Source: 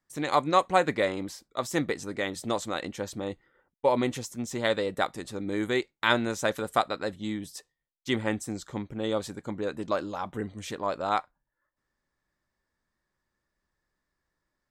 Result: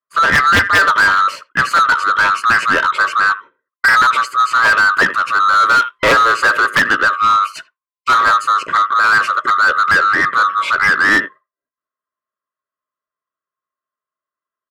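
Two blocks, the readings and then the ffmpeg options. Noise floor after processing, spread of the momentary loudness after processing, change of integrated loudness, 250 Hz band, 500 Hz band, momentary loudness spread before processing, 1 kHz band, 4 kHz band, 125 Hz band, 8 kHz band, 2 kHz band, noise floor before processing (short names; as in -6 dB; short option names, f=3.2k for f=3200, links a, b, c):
under -85 dBFS, 5 LU, +17.5 dB, +2.0 dB, +3.5 dB, 11 LU, +19.0 dB, +14.5 dB, +5.5 dB, +11.0 dB, +24.0 dB, -84 dBFS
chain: -filter_complex "[0:a]afftfilt=real='real(if(lt(b,960),b+48*(1-2*mod(floor(b/48),2)),b),0)':imag='imag(if(lt(b,960),b+48*(1-2*mod(floor(b/48),2)),b),0)':win_size=2048:overlap=0.75,lowpass=8.3k,agate=range=-33dB:threshold=-45dB:ratio=3:detection=peak,equalizer=f=6.1k:t=o:w=1.5:g=-15,asplit=2[a][b];[b]adelay=80,highpass=300,lowpass=3.4k,asoftclip=type=hard:threshold=-16.5dB,volume=-23dB[c];[a][c]amix=inputs=2:normalize=0,aeval=exprs='(mod(4.22*val(0)+1,2)-1)/4.22':c=same,asuperstop=centerf=780:order=8:qfactor=2.7,asplit=2[d][e];[e]highpass=f=720:p=1,volume=30dB,asoftclip=type=tanh:threshold=-8dB[f];[d][f]amix=inputs=2:normalize=0,lowpass=f=2.4k:p=1,volume=-6dB,volume=6dB"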